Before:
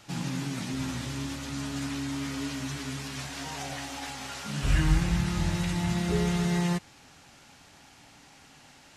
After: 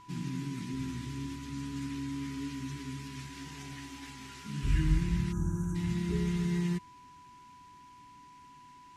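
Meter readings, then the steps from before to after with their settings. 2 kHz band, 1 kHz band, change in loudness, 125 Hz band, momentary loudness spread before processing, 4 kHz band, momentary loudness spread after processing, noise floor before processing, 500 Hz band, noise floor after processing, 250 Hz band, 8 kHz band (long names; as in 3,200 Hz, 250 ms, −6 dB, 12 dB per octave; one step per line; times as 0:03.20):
−9.5 dB, −8.5 dB, −4.5 dB, −3.5 dB, 10 LU, −10.5 dB, 23 LU, −55 dBFS, −8.0 dB, −54 dBFS, −3.5 dB, −10.5 dB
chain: gain on a spectral selection 0:05.32–0:05.75, 1,700–5,600 Hz −26 dB
steady tone 990 Hz −34 dBFS
drawn EQ curve 380 Hz 0 dB, 560 Hz −23 dB, 2,000 Hz −4 dB, 4,000 Hz −7 dB
level −3.5 dB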